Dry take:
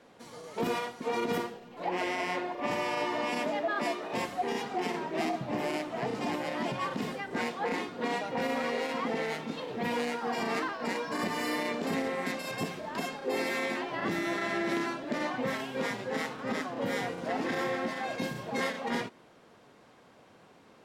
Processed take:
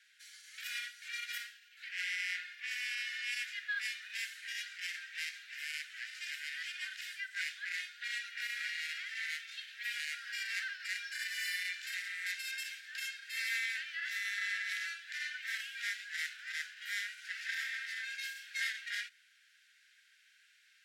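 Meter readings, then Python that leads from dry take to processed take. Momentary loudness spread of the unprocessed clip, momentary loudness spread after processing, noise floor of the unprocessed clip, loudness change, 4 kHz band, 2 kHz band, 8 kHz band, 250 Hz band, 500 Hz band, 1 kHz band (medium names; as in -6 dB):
4 LU, 6 LU, -58 dBFS, -5.5 dB, 0.0 dB, -0.5 dB, 0.0 dB, under -40 dB, under -40 dB, -25.5 dB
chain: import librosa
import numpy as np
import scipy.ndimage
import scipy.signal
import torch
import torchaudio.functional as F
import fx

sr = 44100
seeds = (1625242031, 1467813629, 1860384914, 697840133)

y = scipy.signal.sosfilt(scipy.signal.butter(16, 1500.0, 'highpass', fs=sr, output='sos'), x)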